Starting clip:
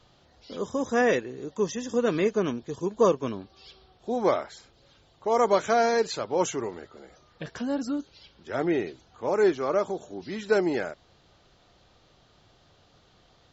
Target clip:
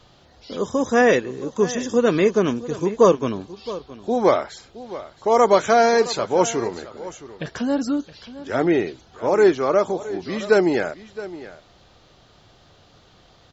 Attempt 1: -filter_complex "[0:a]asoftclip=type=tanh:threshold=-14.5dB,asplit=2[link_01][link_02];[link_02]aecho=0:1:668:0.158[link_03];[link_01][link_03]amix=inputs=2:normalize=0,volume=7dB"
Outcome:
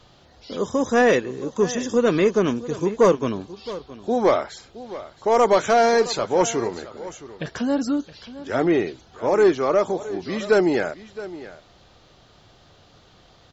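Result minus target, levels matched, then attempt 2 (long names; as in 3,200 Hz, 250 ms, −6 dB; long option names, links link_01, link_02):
soft clipping: distortion +18 dB
-filter_complex "[0:a]asoftclip=type=tanh:threshold=-4dB,asplit=2[link_01][link_02];[link_02]aecho=0:1:668:0.158[link_03];[link_01][link_03]amix=inputs=2:normalize=0,volume=7dB"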